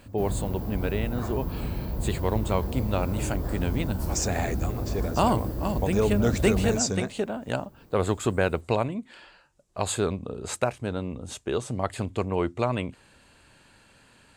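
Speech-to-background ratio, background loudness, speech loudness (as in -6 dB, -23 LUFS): 4.0 dB, -32.5 LUFS, -28.5 LUFS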